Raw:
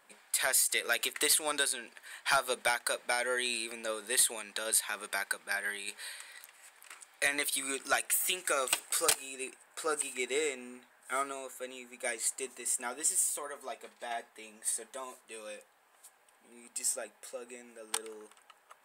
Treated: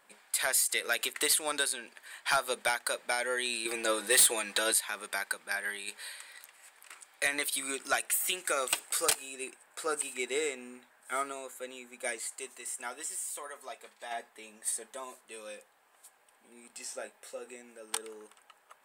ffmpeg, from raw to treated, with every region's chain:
-filter_complex "[0:a]asettb=1/sr,asplit=3[a][b][c];[a]atrim=end=3.654[d];[b]atrim=start=3.65:end=4.73,asetpts=PTS-STARTPTS,afade=t=in:d=0.004:c=qsin,afade=t=out:st=1.076:d=0.004:c=qsin,acontrast=56,aecho=1:1:6.1:0.68,atrim=end_sample=47628,asoftclip=type=hard:threshold=-18dB[e];[c]atrim=start=4.726[f];[d][e]acrossfade=d=0.004:c1=hsin:c2=qsin[g];[g][f]acrossfade=d=0.004:c1=qsin:c2=hsin,asettb=1/sr,asplit=3[h][i][j];[h]atrim=end=12.194[k];[i]atrim=start=12.19:end=14.12,asetpts=PTS-STARTPTS,afade=t=in:d=0.004:c=qsin,afade=t=out:st=1.926:d=0.004:c=qsin,acrossover=split=2700[l][m];[m]acompressor=threshold=-34dB:ratio=4:attack=1:release=60[n];[l][n]amix=inputs=2:normalize=0,lowshelf=f=410:g=-9.5[o];[j]atrim=start=14.116[p];[k][o]acrossfade=d=0.004:c1=hsin:c2=qsin[q];[q][p]acrossfade=d=0.004:c1=qsin:c2=hsin,asettb=1/sr,asplit=3[r][s][t];[r]atrim=end=16.674[u];[s]atrim=start=16.67:end=17.56,asetpts=PTS-STARTPTS,afade=t=in:d=0.004:c=qsin,afade=t=out:st=0.886:d=0.004:c=qsin,acrossover=split=5600[v][w];[w]acompressor=threshold=-47dB:ratio=4:attack=1:release=60[x];[v][x]amix=inputs=2:normalize=0,asplit=2[y][z];[z]adelay=27,volume=-8.5dB[aa];[y][aa]amix=inputs=2:normalize=0,atrim=end_sample=39249[ab];[t]atrim=start=17.556[ac];[u][ab]acrossfade=d=0.004:c1=hsin:c2=qsin[ad];[ad][ac]acrossfade=d=0.004:c1=qsin:c2=hsin"

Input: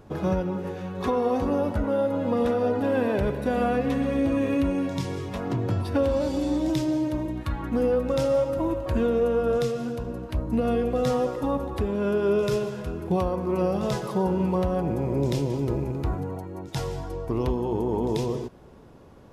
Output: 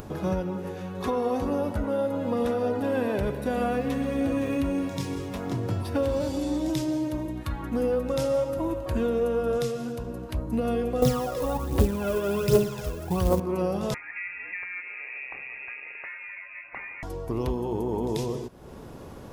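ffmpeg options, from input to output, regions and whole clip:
-filter_complex "[0:a]asettb=1/sr,asplit=3[a][b][c];[a]atrim=end=3.694[d];[b]atrim=start=3.69:end=6.35,asetpts=PTS-STARTPTS,afade=t=in:d=0.004:c=qsin,afade=t=out:st=2.656:d=0.004:c=qsin,aeval=exprs='sgn(val(0))*max(abs(val(0))-0.00178,0)':c=same,aecho=1:1:514:0.251,atrim=end_sample=117306[e];[c]atrim=start=6.346[f];[d][e]acrossfade=d=0.004:c1=hsin:c2=qsin[g];[g][f]acrossfade=d=0.004:c1=qsin:c2=hsin,asettb=1/sr,asplit=3[h][i][j];[h]atrim=end=11.024[k];[i]atrim=start=11.02:end=13.4,asetpts=PTS-STARTPTS,afade=t=in:d=0.004:c=qsin,afade=t=out:st=2.376:d=0.004:c=qsin,aecho=1:1:299:0.266,atrim=end_sample=104958,aphaser=in_gain=1:out_gain=1:delay=2:decay=0.67:speed=1.3:type=triangular,acrusher=bits=6:mode=log:mix=0:aa=0.000001[l];[j]atrim=start=13.396[m];[k][l]acrossfade=d=0.004:c1=hsin:c2=qsin[n];[n][m]acrossfade=d=0.004:c1=qsin:c2=hsin,asettb=1/sr,asplit=3[o][p][q];[o]atrim=end=13.944[r];[p]atrim=start=13.94:end=17.03,asetpts=PTS-STARTPTS,afade=t=in:d=0.004:c=qsin,afade=t=out:st=3.086:d=0.004:c=qsin,highpass=870,bandreject=f=1.4k:w=21,lowpass=f=2.5k:t=q:w=0.5098,lowpass=f=2.5k:t=q:w=0.6013,lowpass=f=2.5k:t=q:w=0.9,lowpass=f=2.5k:t=q:w=2.563,afreqshift=-2900[s];[q]atrim=start=17.026[t];[r][s]acrossfade=d=0.004:c1=hsin:c2=qsin[u];[u][t]acrossfade=d=0.004:c1=qsin:c2=hsin,highshelf=f=6.9k:g=8.5,acompressor=mode=upward:threshold=-29dB:ratio=2.5,volume=-2.5dB"

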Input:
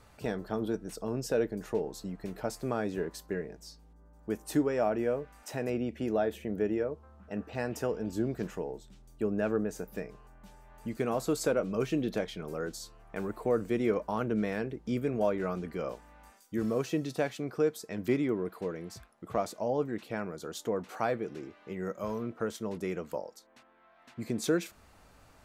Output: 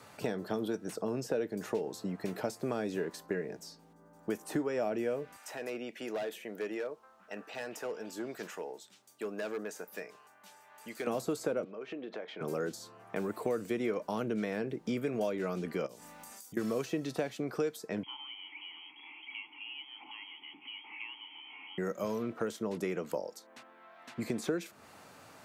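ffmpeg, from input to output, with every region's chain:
-filter_complex "[0:a]asettb=1/sr,asplit=3[a][b][c];[a]atrim=end=5.364[d];[b]atrim=start=5.36:end=11.07,asetpts=PTS-STARTPTS,afade=t=in:d=0.004:c=qsin,afade=t=out:st=5.706:d=0.004:c=qsin,highpass=f=1.4k:p=1,volume=35.5dB,asoftclip=hard,volume=-35.5dB[e];[c]atrim=start=11.066[f];[d][e]acrossfade=d=0.004:c1=hsin:c2=qsin[g];[g][f]acrossfade=d=0.004:c1=qsin:c2=hsin,asettb=1/sr,asplit=3[h][i][j];[h]atrim=end=11.644[k];[i]atrim=start=11.64:end=12.41,asetpts=PTS-STARTPTS,afade=t=in:d=0.004:c=qsin,afade=t=out:st=0.766:d=0.004:c=qsin,highpass=390,lowpass=2.3k,acompressor=threshold=-45dB:ratio=4:attack=3.2:release=140:knee=1:detection=peak[l];[j]atrim=start=12.406[m];[k][l]acrossfade=d=0.004:c1=hsin:c2=qsin[n];[n][m]acrossfade=d=0.004:c1=qsin:c2=hsin,asettb=1/sr,asplit=3[o][p][q];[o]atrim=end=15.864[r];[p]atrim=start=15.86:end=16.57,asetpts=PTS-STARTPTS,afade=t=in:d=0.004:c=qsin,afade=t=out:st=0.706:d=0.004:c=qsin,bass=f=250:g=7,treble=f=4k:g=14,bandreject=f=1.6k:w=18,acompressor=threshold=-48dB:ratio=16:attack=3.2:release=140:knee=1:detection=peak[s];[q]atrim=start=16.566[t];[r][s]acrossfade=d=0.004:c1=hsin:c2=qsin[u];[u][t]acrossfade=d=0.004:c1=qsin:c2=hsin,asettb=1/sr,asplit=3[v][w][x];[v]atrim=end=18.034[y];[w]atrim=start=18.03:end=21.78,asetpts=PTS-STARTPTS,afade=t=in:d=0.004:c=qsin,afade=t=out:st=3.746:d=0.004:c=qsin,aeval=exprs='val(0)+0.5*0.0168*sgn(val(0))':c=same,lowpass=f=2.9k:t=q:w=0.5098,lowpass=f=2.9k:t=q:w=0.6013,lowpass=f=2.9k:t=q:w=0.9,lowpass=f=2.9k:t=q:w=2.563,afreqshift=-3400,asplit=3[z][aa][ab];[z]bandpass=f=300:t=q:w=8,volume=0dB[ac];[aa]bandpass=f=870:t=q:w=8,volume=-6dB[ad];[ab]bandpass=f=2.24k:t=q:w=8,volume=-9dB[ae];[ac][ad][ae]amix=inputs=3:normalize=0[af];[x]atrim=start=21.776[ag];[y][af]acrossfade=d=0.004:c1=hsin:c2=qsin[ah];[ah][ag]acrossfade=d=0.004:c1=qsin:c2=hsin,highpass=f=100:w=0.5412,highpass=f=100:w=1.3066,lowshelf=f=130:g=-9,acrossover=split=640|2200[ai][aj][ak];[ai]acompressor=threshold=-39dB:ratio=4[al];[aj]acompressor=threshold=-51dB:ratio=4[am];[ak]acompressor=threshold=-55dB:ratio=4[an];[al][am][an]amix=inputs=3:normalize=0,volume=6.5dB"

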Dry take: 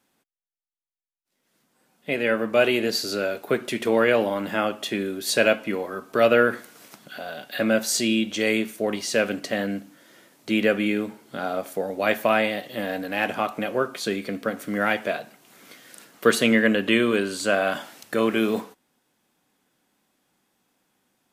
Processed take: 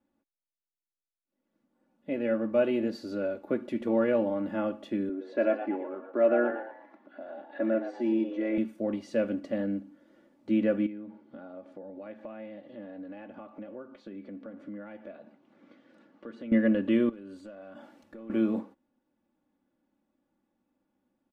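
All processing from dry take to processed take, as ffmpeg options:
-filter_complex "[0:a]asettb=1/sr,asplit=3[a][b][c];[a]atrim=end=5.094[d];[b]atrim=start=5.09:end=8.58,asetpts=PTS-STARTPTS,afade=t=in:d=0.004:c=qsin,afade=t=out:st=3.486:d=0.004:c=qsin,highpass=290,lowpass=2.1k,aecho=1:1:3:0.52,atrim=end_sample=153909,asplit=6[e][f][g][h][i][j];[f]adelay=117,afreqshift=91,volume=-8dB[k];[g]adelay=234,afreqshift=182,volume=-16dB[l];[h]adelay=351,afreqshift=273,volume=-23.9dB[m];[i]adelay=468,afreqshift=364,volume=-31.9dB[n];[j]adelay=585,afreqshift=455,volume=-39.8dB[o];[e][k][l][m][n][o]amix=inputs=6:normalize=0,atrim=end_sample=153909[p];[c]atrim=start=8.576[q];[d][p]acrossfade=d=0.004:c1=hsin:c2=qsin[r];[r][q]acrossfade=d=0.004:c1=qsin:c2=hsin,asettb=1/sr,asplit=3[s][t][u];[s]atrim=end=10.864[v];[t]atrim=start=10.86:end=16.52,asetpts=PTS-STARTPTS,afade=t=in:d=0.004:c=qsin,afade=t=out:st=5.656:d=0.004:c=qsin,highpass=100,lowpass=4.4k,acompressor=threshold=-39dB:ratio=2.5:attack=3.2:release=140:knee=1:detection=peak[w];[u]atrim=start=16.516[x];[v][w]acrossfade=d=0.004:c1=hsin:c2=qsin[y];[y][x]acrossfade=d=0.004:c1=qsin:c2=hsin,asettb=1/sr,asplit=3[z][aa][ab];[z]atrim=end=17.094[ac];[aa]atrim=start=17.09:end=18.3,asetpts=PTS-STARTPTS,afade=t=in:d=0.004:c=qsin,afade=t=out:st=1.206:d=0.004:c=qsin,acompressor=threshold=-34dB:ratio=12:attack=3.2:release=140:knee=1:detection=peak,asoftclip=type=hard:threshold=-31.5dB[ad];[ab]atrim=start=18.296[ae];[ac][ad]acrossfade=d=0.004:c1=hsin:c2=qsin[af];[af][ae]acrossfade=d=0.004:c1=qsin:c2=hsin,lowpass=f=1.3k:p=1,tiltshelf=f=710:g=5.5,aecho=1:1:3.5:0.67,volume=-8.5dB"

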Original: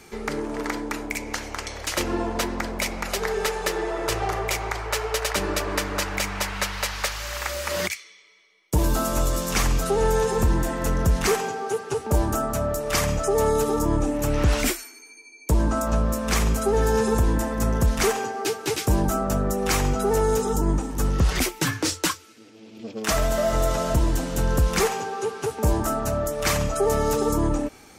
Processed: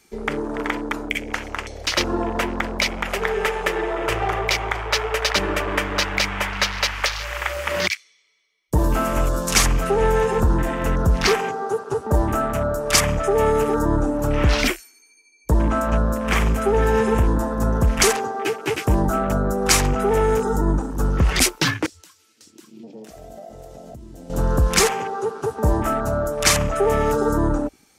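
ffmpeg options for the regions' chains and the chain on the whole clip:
-filter_complex "[0:a]asettb=1/sr,asplit=3[a][b][c];[a]atrim=end=21.864[d];[b]atrim=start=21.86:end=24.3,asetpts=PTS-STARTPTS,afade=t=in:d=0.004:c=qsin,afade=t=out:st=2.436:d=0.004:c=qsin,highpass=75,aecho=1:1:546:0.266,atrim=end_sample=107604,acompressor=threshold=-37dB:ratio=8:attack=3.2:release=140:knee=1:detection=peak[e];[c]atrim=start=24.296[f];[d][e]acrossfade=d=0.004:c1=hsin:c2=qsin[g];[g][f]acrossfade=d=0.004:c1=qsin:c2=hsin,afwtdn=0.0224,highshelf=f=2.2k:g=9,volume=2.5dB"

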